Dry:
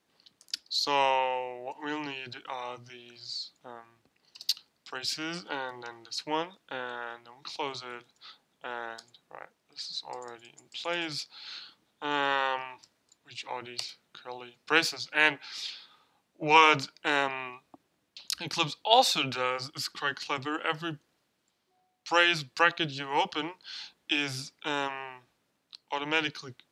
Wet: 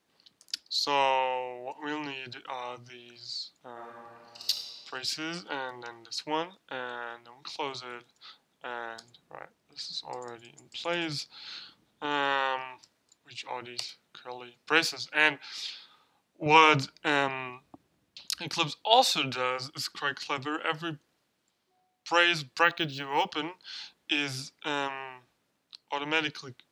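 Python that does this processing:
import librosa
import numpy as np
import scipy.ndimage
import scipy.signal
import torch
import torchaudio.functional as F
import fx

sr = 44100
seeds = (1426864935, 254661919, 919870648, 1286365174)

y = fx.reverb_throw(x, sr, start_s=3.72, length_s=0.77, rt60_s=2.5, drr_db=-5.0)
y = fx.low_shelf(y, sr, hz=270.0, db=8.5, at=(8.96, 12.06))
y = fx.low_shelf(y, sr, hz=190.0, db=11.0, at=(16.46, 18.27))
y = fx.resample_linear(y, sr, factor=2, at=(22.63, 23.32))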